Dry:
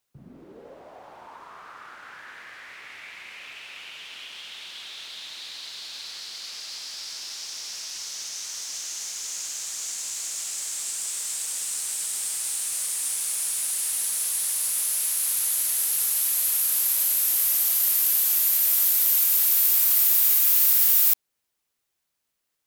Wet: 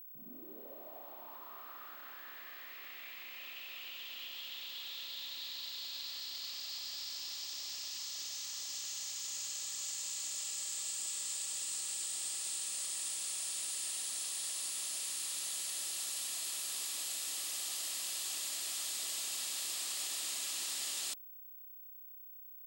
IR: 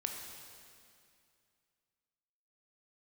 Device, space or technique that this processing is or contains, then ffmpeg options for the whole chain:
old television with a line whistle: -af "highpass=f=220:w=0.5412,highpass=f=220:w=1.3066,equalizer=f=470:t=q:w=4:g=-7,equalizer=f=910:t=q:w=4:g=-6,equalizer=f=1.5k:t=q:w=4:g=-9,equalizer=f=2.2k:t=q:w=4:g=-6,equalizer=f=5.9k:t=q:w=4:g=-7,lowpass=f=7.7k:w=0.5412,lowpass=f=7.7k:w=1.3066,aeval=exprs='val(0)+0.00562*sin(2*PI*15734*n/s)':c=same,volume=-4dB"

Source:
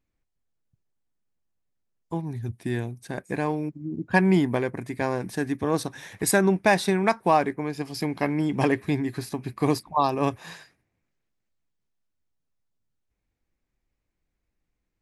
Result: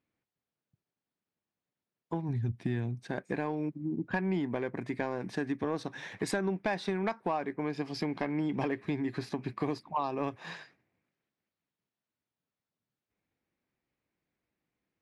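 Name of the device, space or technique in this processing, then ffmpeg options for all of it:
AM radio: -filter_complex "[0:a]asplit=3[a][b][c];[a]afade=t=out:st=2.28:d=0.02[d];[b]asubboost=boost=3.5:cutoff=240,afade=t=in:st=2.28:d=0.02,afade=t=out:st=2.99:d=0.02[e];[c]afade=t=in:st=2.99:d=0.02[f];[d][e][f]amix=inputs=3:normalize=0,highpass=140,lowpass=4.1k,acompressor=threshold=-28dB:ratio=5,asoftclip=type=tanh:threshold=-18.5dB"

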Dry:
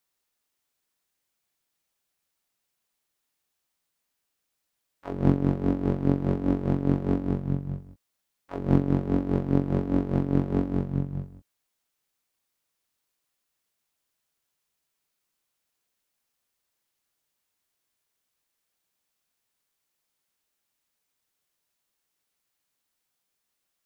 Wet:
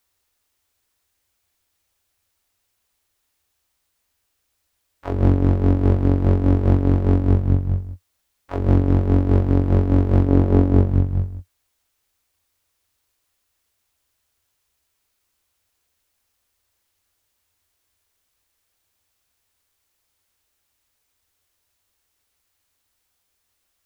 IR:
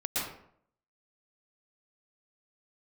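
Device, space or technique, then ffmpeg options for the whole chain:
car stereo with a boomy subwoofer: -filter_complex "[0:a]lowshelf=f=110:t=q:w=3:g=7,alimiter=limit=-12.5dB:level=0:latency=1:release=66,asettb=1/sr,asplit=3[a][b][c];[a]atrim=end=10.274[d];[b]atrim=start=10.27:end=10.9,asetpts=PTS-STARTPTS,afade=t=in:d=0.004:c=qsin,afade=t=out:st=0.626:d=0.004:c=qsin,equalizer=f=420:w=0.5:g=4.5[e];[c]atrim=start=10.896[f];[d][e]acrossfade=d=0.004:c1=hsin:c2=qsin[g];[g][f]acrossfade=d=0.004:c1=qsin:c2=hsin,volume=7.5dB"

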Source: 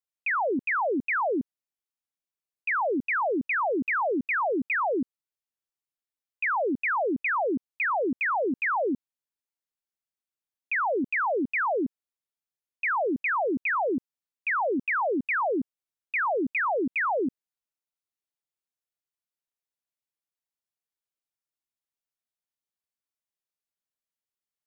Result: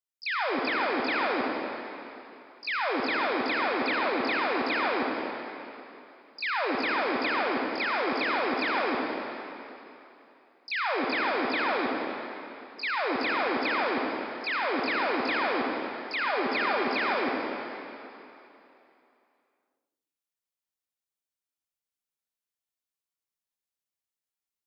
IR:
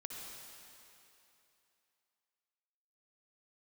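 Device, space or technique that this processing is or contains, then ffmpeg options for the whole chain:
shimmer-style reverb: -filter_complex "[0:a]asettb=1/sr,asplit=3[a][b][c];[a]atrim=end=16.214[d];[b]atrim=start=16.21:end=17.01,asetpts=PTS-STARTPTS,afade=t=in:d=0.004:c=qsin,afade=t=out:st=0.796:d=0.004:c=qsin,aecho=1:1:5:0.38,atrim=end_sample=35280[e];[c]atrim=start=17.006[f];[d][e]acrossfade=d=0.004:c1=hsin:c2=qsin[g];[g][f]acrossfade=d=0.004:c1=qsin:c2=hsin,highshelf=f=2.5k:g=2.5,asplit=2[h][i];[i]asetrate=88200,aresample=44100,atempo=0.5,volume=-8dB[j];[h][j]amix=inputs=2:normalize=0[k];[1:a]atrim=start_sample=2205[l];[k][l]afir=irnorm=-1:irlink=0"

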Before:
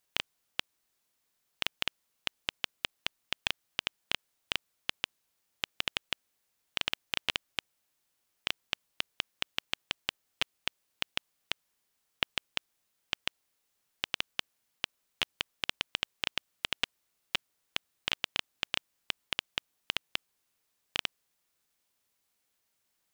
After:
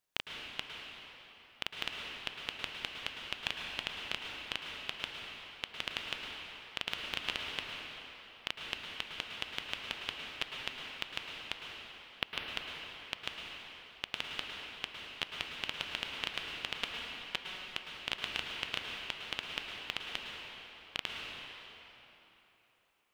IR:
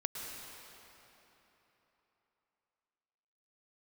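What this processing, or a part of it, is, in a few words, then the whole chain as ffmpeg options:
swimming-pool hall: -filter_complex "[1:a]atrim=start_sample=2205[a];[0:a][a]afir=irnorm=-1:irlink=0,highshelf=f=4.2k:g=-5,volume=-2.5dB"

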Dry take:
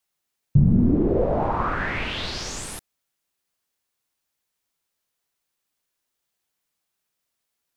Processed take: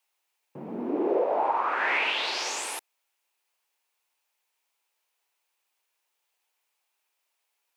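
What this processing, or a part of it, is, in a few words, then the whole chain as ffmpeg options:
laptop speaker: -af "highpass=f=370:w=0.5412,highpass=f=370:w=1.3066,equalizer=f=890:t=o:w=0.51:g=8,equalizer=f=2.5k:t=o:w=0.58:g=7,alimiter=limit=-15.5dB:level=0:latency=1:release=343"

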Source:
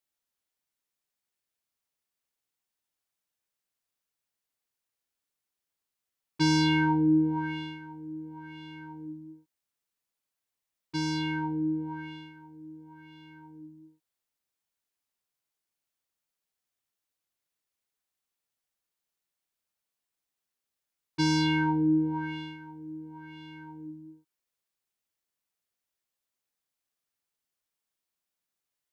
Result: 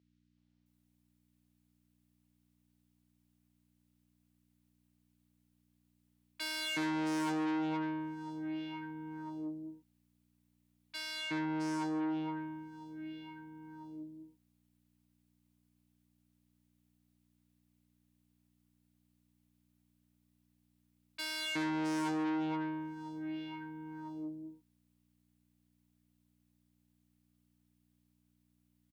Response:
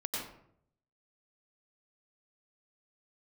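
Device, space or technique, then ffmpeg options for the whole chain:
valve amplifier with mains hum: -filter_complex "[0:a]acrossover=split=1400|5700[a][b][c];[a]adelay=370[d];[c]adelay=660[e];[d][b][e]amix=inputs=3:normalize=0,aeval=exprs='(tanh(56.2*val(0)+0.3)-tanh(0.3))/56.2':c=same,aeval=exprs='val(0)+0.000398*(sin(2*PI*60*n/s)+sin(2*PI*2*60*n/s)/2+sin(2*PI*3*60*n/s)/3+sin(2*PI*4*60*n/s)/4+sin(2*PI*5*60*n/s)/5)':c=same,highpass=220,equalizer=f=64:t=o:w=1.3:g=9,volume=3dB"

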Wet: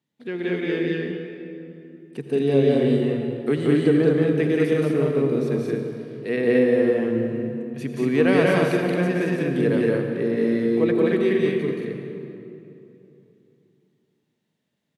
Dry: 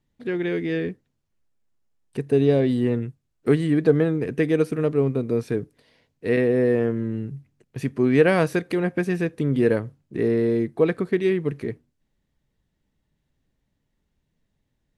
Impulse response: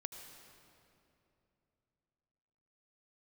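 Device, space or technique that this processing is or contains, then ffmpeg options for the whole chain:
stadium PA: -filter_complex "[0:a]highpass=f=140:w=0.5412,highpass=f=140:w=1.3066,equalizer=f=3.3k:t=o:w=0.95:g=3.5,aecho=1:1:177.8|221.6:0.891|0.794[a];[1:a]atrim=start_sample=2205[b];[a][b]afir=irnorm=-1:irlink=0"

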